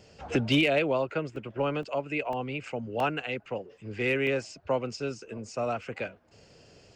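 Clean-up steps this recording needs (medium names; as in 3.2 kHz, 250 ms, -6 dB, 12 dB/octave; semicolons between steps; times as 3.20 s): clip repair -16 dBFS; interpolate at 1.36/1.83/2.33/3.00/3.78/4.27/5.83 s, 1.8 ms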